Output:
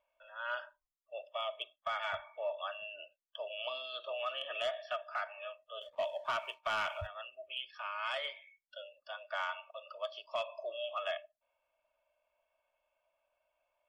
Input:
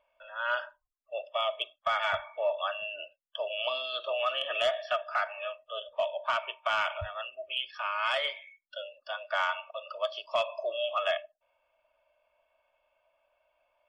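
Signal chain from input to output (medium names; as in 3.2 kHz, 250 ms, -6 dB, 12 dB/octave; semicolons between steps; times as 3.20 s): 5.81–7.07 s: waveshaping leveller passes 1; trim -8 dB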